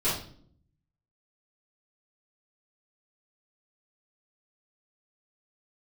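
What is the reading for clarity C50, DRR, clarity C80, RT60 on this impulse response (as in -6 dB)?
3.0 dB, -13.0 dB, 8.5 dB, no single decay rate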